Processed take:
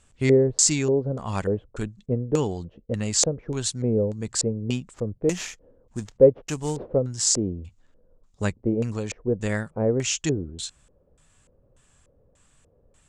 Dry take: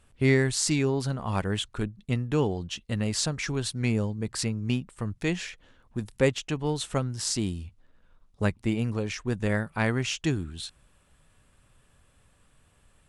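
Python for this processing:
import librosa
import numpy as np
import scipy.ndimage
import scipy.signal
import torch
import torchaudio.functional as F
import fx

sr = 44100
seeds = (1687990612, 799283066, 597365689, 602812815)

y = fx.wow_flutter(x, sr, seeds[0], rate_hz=2.1, depth_cents=16.0)
y = fx.sample_hold(y, sr, seeds[1], rate_hz=8800.0, jitter_pct=20, at=(4.93, 6.97), fade=0.02)
y = fx.filter_lfo_lowpass(y, sr, shape='square', hz=1.7, low_hz=500.0, high_hz=7200.0, q=4.3)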